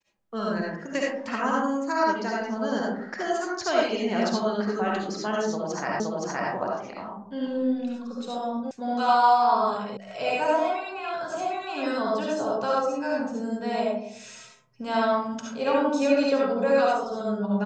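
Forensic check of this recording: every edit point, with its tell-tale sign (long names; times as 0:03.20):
0:06.00: the same again, the last 0.52 s
0:08.71: cut off before it has died away
0:09.97: cut off before it has died away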